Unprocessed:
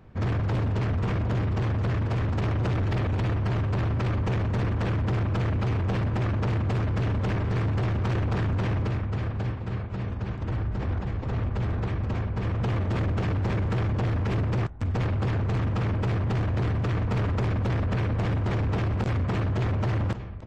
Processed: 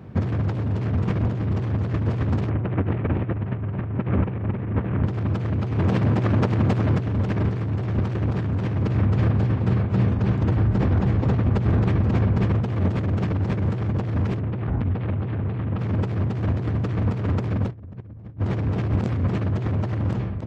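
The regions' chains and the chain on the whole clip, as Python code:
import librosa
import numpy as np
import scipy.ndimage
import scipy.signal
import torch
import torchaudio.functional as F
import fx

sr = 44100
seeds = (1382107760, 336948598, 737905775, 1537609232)

y = fx.chain(x, sr, fx.lowpass(hz=2700.0, slope=24),
    fx.echo_single(ms=228, db=-5.5), at=(2.49, 5.04))
y = fx.chain(y, sr, fx.highpass(hz=98.0, slope=12),
    fx.hum_notches(base_hz=50, count=9), at=(5.78, 6.98))
y = fx.chain(y, sr, fx.lowpass(hz=3500.0, slope=24),
    fx.env_flatten(amount_pct=70), at=(14.39, 15.79))
y = fx.chain(y, sr, fx.tilt_eq(slope=-3.0),
    fx.hum_notches(base_hz=60, count=8), at=(17.71, 18.39))
y = scipy.signal.sosfilt(scipy.signal.butter(2, 120.0, 'highpass', fs=sr, output='sos'), y)
y = fx.low_shelf(y, sr, hz=370.0, db=10.5)
y = fx.over_compress(y, sr, threshold_db=-23.0, ratio=-0.5)
y = y * 10.0 ** (1.5 / 20.0)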